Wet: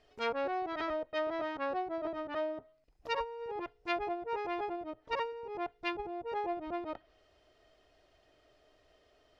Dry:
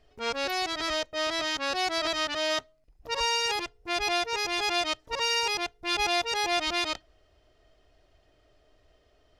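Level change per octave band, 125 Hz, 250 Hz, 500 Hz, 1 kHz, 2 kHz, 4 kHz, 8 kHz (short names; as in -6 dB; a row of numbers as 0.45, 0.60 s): -7.5 dB, -2.5 dB, -3.5 dB, -6.0 dB, -12.5 dB, -20.5 dB, under -30 dB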